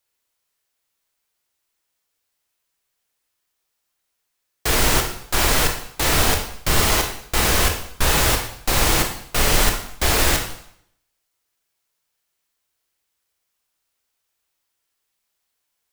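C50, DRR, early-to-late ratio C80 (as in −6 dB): 6.0 dB, 2.5 dB, 10.0 dB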